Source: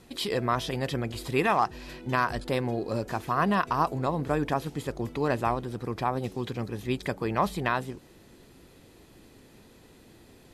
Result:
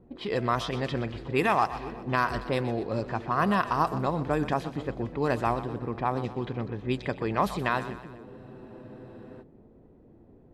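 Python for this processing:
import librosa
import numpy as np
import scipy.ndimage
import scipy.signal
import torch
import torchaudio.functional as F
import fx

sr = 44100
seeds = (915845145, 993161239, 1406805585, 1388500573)

y = fx.env_lowpass(x, sr, base_hz=560.0, full_db=-21.5)
y = fx.echo_split(y, sr, split_hz=510.0, low_ms=476, high_ms=124, feedback_pct=52, wet_db=-13.5)
y = fx.spec_freeze(y, sr, seeds[0], at_s=8.26, hold_s=1.15)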